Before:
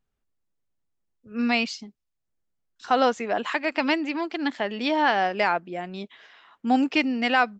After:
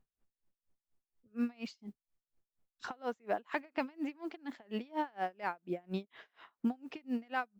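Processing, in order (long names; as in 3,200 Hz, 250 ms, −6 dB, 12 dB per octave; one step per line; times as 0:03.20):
noise that follows the level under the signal 31 dB
high-shelf EQ 2,200 Hz −10 dB
downward compressor 10 to 1, threshold −32 dBFS, peak gain reduction 16.5 dB
tremolo with a sine in dB 4.2 Hz, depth 31 dB
level +4 dB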